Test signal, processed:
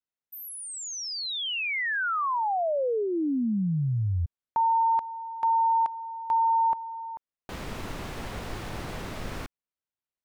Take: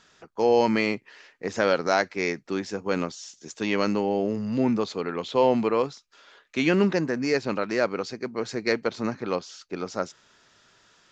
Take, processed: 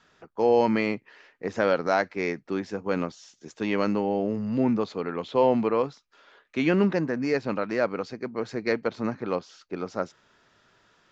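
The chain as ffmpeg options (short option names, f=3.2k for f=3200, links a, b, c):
-af "lowpass=f=2.1k:p=1,adynamicequalizer=threshold=0.00891:dfrequency=380:dqfactor=6.4:tfrequency=380:tqfactor=6.4:attack=5:release=100:ratio=0.375:range=2.5:mode=cutabove:tftype=bell"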